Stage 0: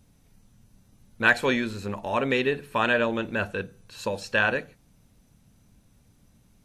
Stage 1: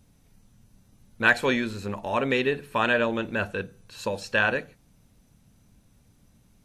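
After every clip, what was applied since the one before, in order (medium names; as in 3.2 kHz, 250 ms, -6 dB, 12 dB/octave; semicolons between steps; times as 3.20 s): no audible change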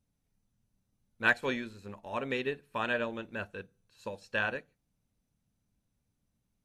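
upward expansion 1.5:1, over -44 dBFS; trim -5.5 dB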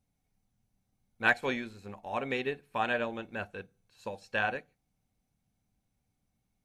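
small resonant body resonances 760/2200 Hz, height 11 dB, ringing for 45 ms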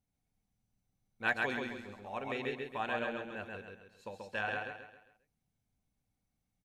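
feedback delay 134 ms, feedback 40%, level -3 dB; trim -6.5 dB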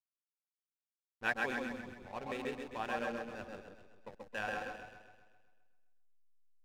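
hysteresis with a dead band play -38 dBFS; echo whose repeats swap between lows and highs 130 ms, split 1.6 kHz, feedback 55%, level -5.5 dB; trim -2 dB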